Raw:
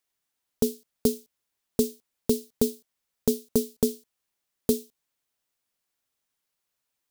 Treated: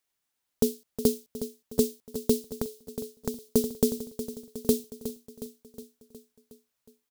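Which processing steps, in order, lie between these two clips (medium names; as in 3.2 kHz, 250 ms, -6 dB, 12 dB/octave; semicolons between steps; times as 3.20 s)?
on a send: feedback delay 364 ms, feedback 59%, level -11.5 dB; 2.49–3.52 s: on the sum: compression 6:1, threshold -29 dBFS, peak gain reduction 11.5 dB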